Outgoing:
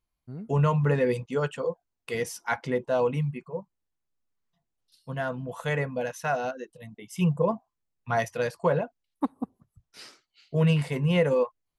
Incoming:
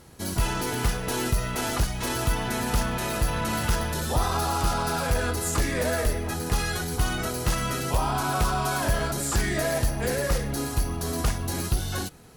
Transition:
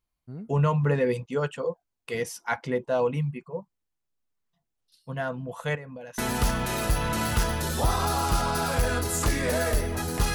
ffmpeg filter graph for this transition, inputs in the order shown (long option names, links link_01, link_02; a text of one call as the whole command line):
ffmpeg -i cue0.wav -i cue1.wav -filter_complex "[0:a]asettb=1/sr,asplit=3[link_01][link_02][link_03];[link_01]atrim=end=5.754[link_04];[link_02]atrim=start=5.75:end=6.18,asetpts=PTS-STARTPTS,afade=type=in:duration=0.004:curve=qsin,afade=type=out:start_time=0.426:duration=0.004:curve=qsin,acompressor=threshold=-37dB:ratio=8:attack=3.2:release=140:knee=1:detection=peak[link_05];[link_03]atrim=start=6.176[link_06];[link_04][link_05]acrossfade=duration=0.004:curve1=hsin:curve2=qsin[link_07];[link_07][link_06]acrossfade=duration=0.004:curve1=qsin:curve2=hsin,apad=whole_dur=10.34,atrim=end=10.34,atrim=end=6.182[link_08];[1:a]atrim=start=2.498:end=6.66[link_09];[link_08][link_09]acrossfade=duration=0.004:curve1=hsin:curve2=hsin" out.wav